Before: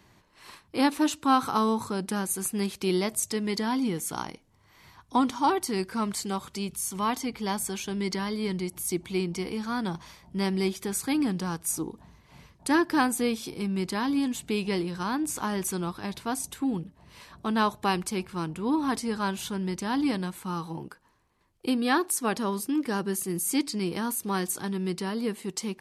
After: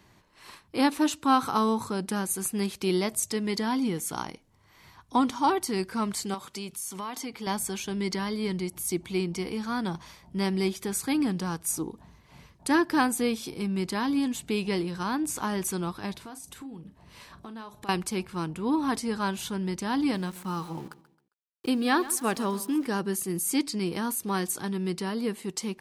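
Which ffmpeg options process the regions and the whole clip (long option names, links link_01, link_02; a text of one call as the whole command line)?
ffmpeg -i in.wav -filter_complex "[0:a]asettb=1/sr,asplit=3[link_01][link_02][link_03];[link_01]atrim=end=6.344[link_04];[link_02]atrim=start=6.34:end=7.47,asetpts=PTS-STARTPTS,afade=type=in:duration=0.004:curve=qsin,afade=type=out:start_time=1.126:duration=0.004:curve=qsin,highpass=frequency=270:poles=1,acompressor=threshold=-31dB:ratio=6:attack=3.2:release=140:knee=1:detection=peak[link_05];[link_03]atrim=start=7.466[link_06];[link_04][link_05]acrossfade=duration=0.004:curve1=hsin:curve2=qsin[link_07];[link_07][link_06]acrossfade=duration=0.004:curve1=qsin:curve2=hsin,asettb=1/sr,asplit=3[link_08][link_09][link_10];[link_08]atrim=end=16.134[link_11];[link_09]atrim=start=16.13:end=17.89,asetpts=PTS-STARTPTS,afade=type=in:duration=0.004:curve=qsin,afade=type=out:start_time=1.756:duration=0.004:curve=qsin,acompressor=threshold=-40dB:ratio=6:attack=3.2:release=140:knee=1:detection=peak,asplit=2[link_12][link_13];[link_13]adelay=40,volume=-13dB[link_14];[link_12][link_14]amix=inputs=2:normalize=0,atrim=end_sample=77616[link_15];[link_10]atrim=start=17.886[link_16];[link_11][link_15]acrossfade=duration=0.004:curve1=hsin:curve2=qsin[link_17];[link_17][link_16]acrossfade=duration=0.004:curve1=qsin:curve2=hsin,asettb=1/sr,asplit=3[link_18][link_19][link_20];[link_18]atrim=end=20.154[link_21];[link_19]atrim=start=20.15:end=22.86,asetpts=PTS-STARTPTS,afade=type=in:duration=0.004:curve=qsin,afade=type=out:start_time=2.706:duration=0.004:curve=qsin,aeval=exprs='val(0)*gte(abs(val(0)),0.00501)':channel_layout=same,aecho=1:1:134|268|402:0.141|0.048|0.0163,atrim=end_sample=119511[link_22];[link_20]atrim=start=22.856[link_23];[link_21][link_22]acrossfade=duration=0.004:curve1=hsin:curve2=qsin[link_24];[link_24][link_23]acrossfade=duration=0.004:curve1=qsin:curve2=hsin" out.wav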